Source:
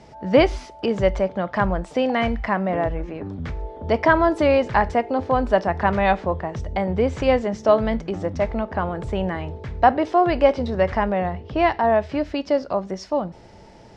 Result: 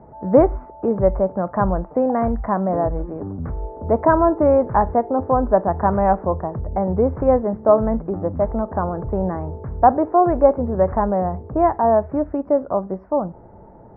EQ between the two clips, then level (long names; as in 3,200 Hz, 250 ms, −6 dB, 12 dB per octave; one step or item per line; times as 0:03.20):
inverse Chebyshev low-pass filter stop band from 3,200 Hz, stop band 50 dB
+2.5 dB